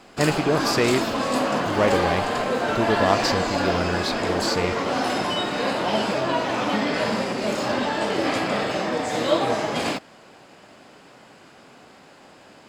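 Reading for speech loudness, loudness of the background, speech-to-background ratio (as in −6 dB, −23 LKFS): −25.5 LKFS, −24.0 LKFS, −1.5 dB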